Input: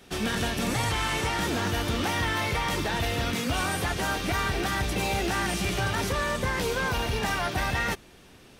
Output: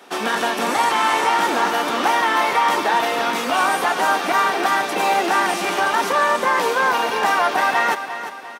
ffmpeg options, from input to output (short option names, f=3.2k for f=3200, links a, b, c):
-filter_complex "[0:a]highpass=f=240:w=0.5412,highpass=f=240:w=1.3066,equalizer=f=970:w=0.9:g=11.5,asplit=2[a][b];[b]aecho=0:1:349|698|1047|1396|1745:0.282|0.124|0.0546|0.024|0.0106[c];[a][c]amix=inputs=2:normalize=0,volume=3.5dB"